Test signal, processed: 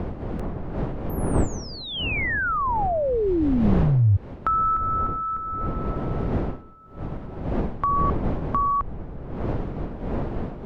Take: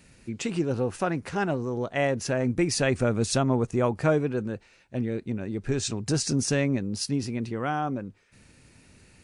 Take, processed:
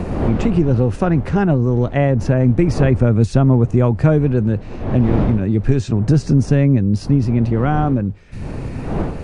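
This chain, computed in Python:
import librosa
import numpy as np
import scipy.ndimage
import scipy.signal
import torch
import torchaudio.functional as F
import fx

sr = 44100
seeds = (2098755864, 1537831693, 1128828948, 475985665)

y = fx.dmg_wind(x, sr, seeds[0], corner_hz=610.0, level_db=-41.0)
y = fx.riaa(y, sr, side='playback')
y = fx.band_squash(y, sr, depth_pct=70)
y = F.gain(torch.from_numpy(y), 4.0).numpy()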